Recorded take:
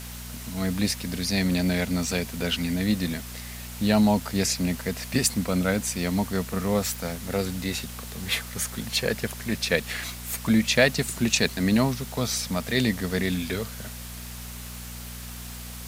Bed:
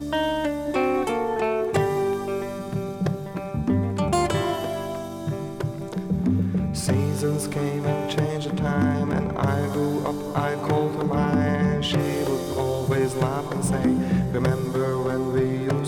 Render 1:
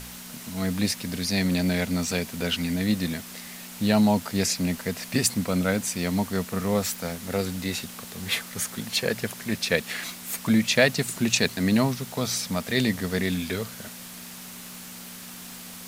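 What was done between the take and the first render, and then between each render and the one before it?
hum removal 60 Hz, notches 2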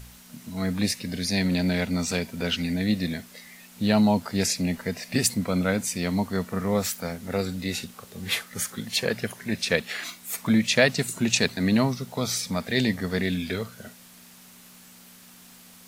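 noise reduction from a noise print 9 dB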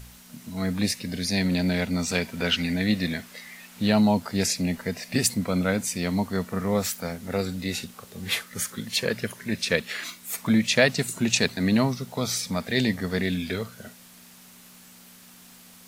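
0:02.15–0:03.90: parametric band 1,700 Hz +5 dB 2.5 octaves
0:08.40–0:10.24: parametric band 750 Hz −8.5 dB 0.21 octaves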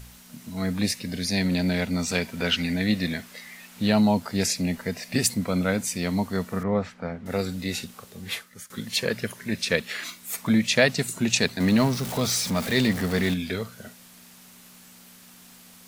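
0:06.63–0:07.26: low-pass filter 1,900 Hz
0:07.98–0:08.70: fade out linear, to −18.5 dB
0:11.60–0:13.34: converter with a step at zero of −28.5 dBFS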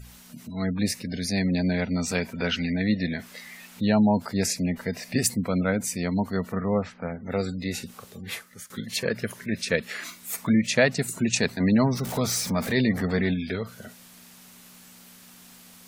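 gate on every frequency bin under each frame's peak −30 dB strong
dynamic equaliser 3,500 Hz, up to −6 dB, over −42 dBFS, Q 1.4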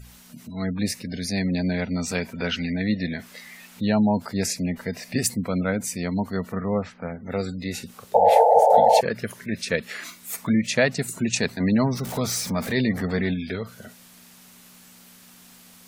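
0:08.14–0:09.01: sound drawn into the spectrogram noise 440–910 Hz −15 dBFS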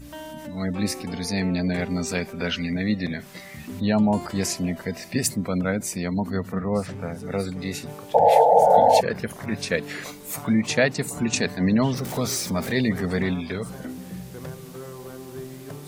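mix in bed −14.5 dB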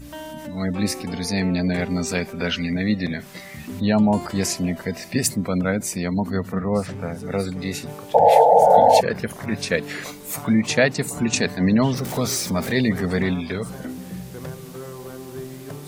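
level +2.5 dB
brickwall limiter −2 dBFS, peak gain reduction 1.5 dB

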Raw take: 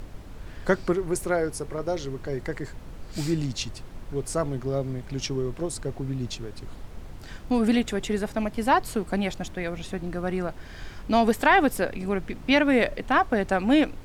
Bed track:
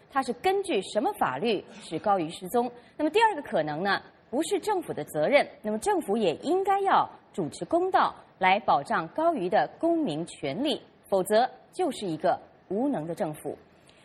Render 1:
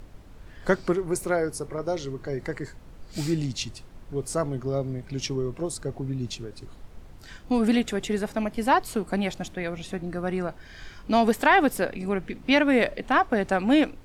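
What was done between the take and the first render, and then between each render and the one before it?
noise reduction from a noise print 6 dB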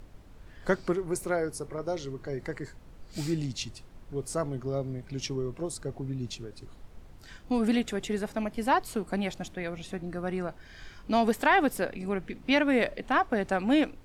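level −4 dB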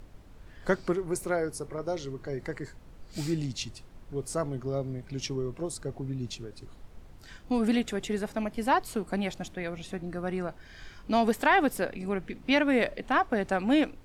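no processing that can be heard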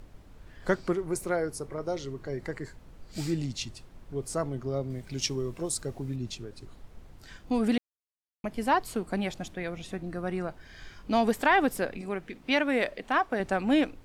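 0:04.90–0:06.16: high-shelf EQ 3,200 Hz +9 dB
0:07.78–0:08.44: silence
0:12.01–0:13.40: low-shelf EQ 210 Hz −9 dB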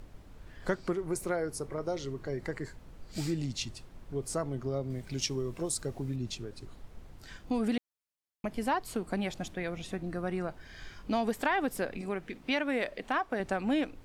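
downward compressor 2 to 1, threshold −30 dBFS, peak gain reduction 7.5 dB

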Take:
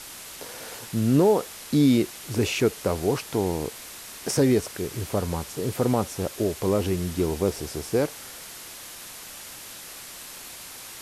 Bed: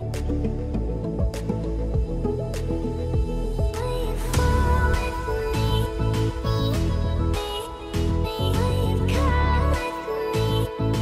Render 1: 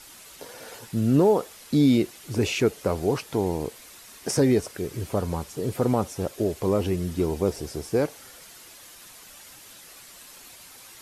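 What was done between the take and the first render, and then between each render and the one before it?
broadband denoise 8 dB, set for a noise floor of −41 dBFS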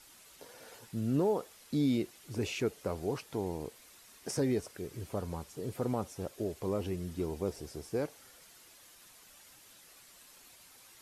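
level −10.5 dB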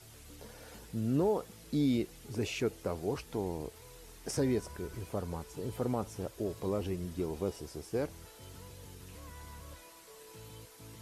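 mix in bed −29 dB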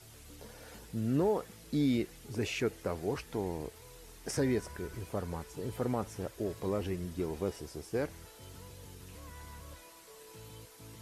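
dynamic equaliser 1,800 Hz, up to +6 dB, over −58 dBFS, Q 1.9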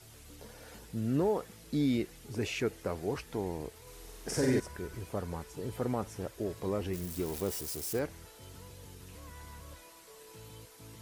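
0:03.82–0:04.60: flutter between parallel walls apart 7.9 metres, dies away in 0.85 s
0:06.93–0:07.99: spike at every zero crossing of −33 dBFS

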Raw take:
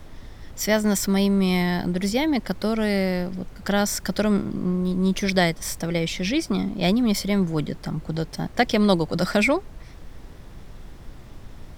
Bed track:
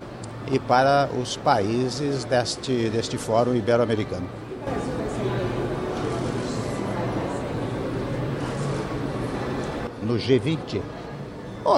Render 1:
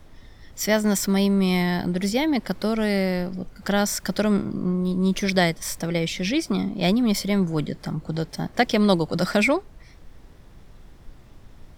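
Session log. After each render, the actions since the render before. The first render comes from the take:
noise reduction from a noise print 6 dB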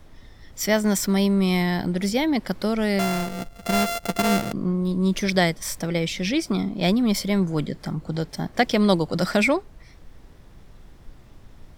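0:02.99–0:04.53: samples sorted by size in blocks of 64 samples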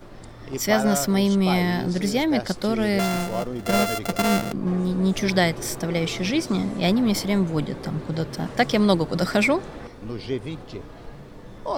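mix in bed track −8.5 dB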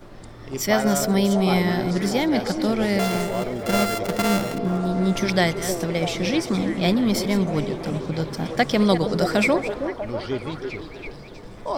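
delay that plays each chunk backwards 191 ms, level −12.5 dB
echo through a band-pass that steps 321 ms, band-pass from 410 Hz, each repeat 0.7 octaves, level −4 dB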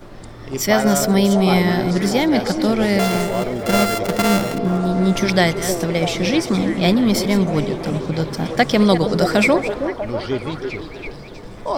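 level +4.5 dB
brickwall limiter −3 dBFS, peak gain reduction 1 dB

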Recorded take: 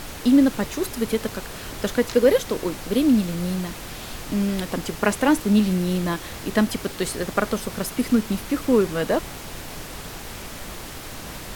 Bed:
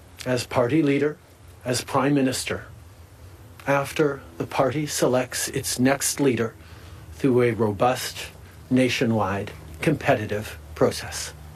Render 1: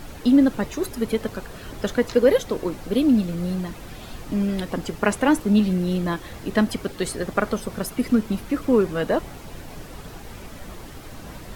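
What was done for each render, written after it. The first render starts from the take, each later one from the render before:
broadband denoise 9 dB, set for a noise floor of −36 dBFS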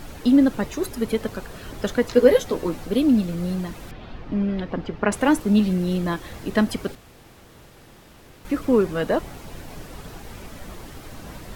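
0:02.15–0:02.85: double-tracking delay 12 ms −5 dB
0:03.91–0:05.12: high-frequency loss of the air 260 metres
0:06.95–0:08.45: fill with room tone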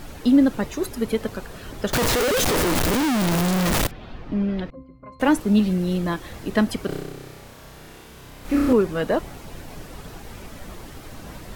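0:01.93–0:03.87: sign of each sample alone
0:04.70–0:05.20: resonances in every octave C, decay 0.32 s
0:06.86–0:08.73: flutter between parallel walls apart 5.4 metres, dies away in 1.4 s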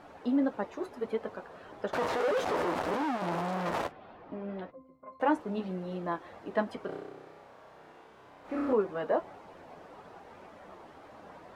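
flanger 1.7 Hz, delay 9.4 ms, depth 2.9 ms, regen −40%
resonant band-pass 780 Hz, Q 1.1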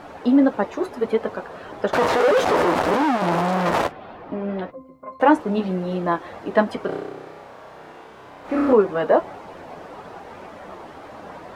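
level +12 dB

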